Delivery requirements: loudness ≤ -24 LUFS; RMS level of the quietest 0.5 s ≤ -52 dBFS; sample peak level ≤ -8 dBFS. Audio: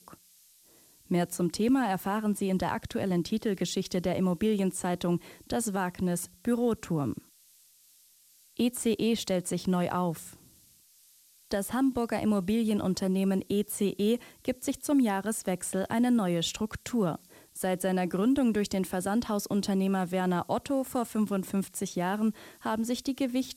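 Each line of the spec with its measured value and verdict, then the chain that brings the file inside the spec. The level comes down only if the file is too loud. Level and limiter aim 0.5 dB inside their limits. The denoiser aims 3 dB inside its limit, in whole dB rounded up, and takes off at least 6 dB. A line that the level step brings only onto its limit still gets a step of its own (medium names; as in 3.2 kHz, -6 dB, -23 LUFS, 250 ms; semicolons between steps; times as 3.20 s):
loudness -29.5 LUFS: pass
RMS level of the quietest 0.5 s -61 dBFS: pass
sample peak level -17.5 dBFS: pass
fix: none needed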